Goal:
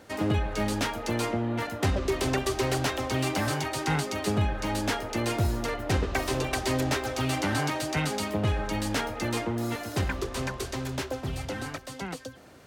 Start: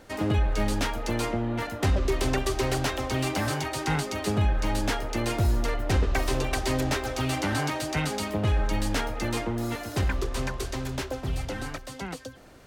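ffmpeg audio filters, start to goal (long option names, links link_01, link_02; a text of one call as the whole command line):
ffmpeg -i in.wav -af "highpass=76" out.wav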